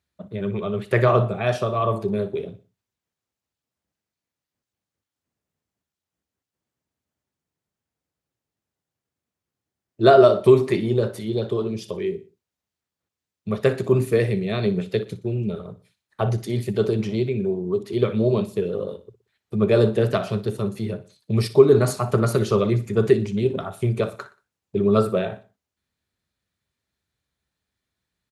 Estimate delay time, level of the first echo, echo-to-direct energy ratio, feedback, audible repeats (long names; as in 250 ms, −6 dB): 60 ms, −16.0 dB, −15.5 dB, 38%, 3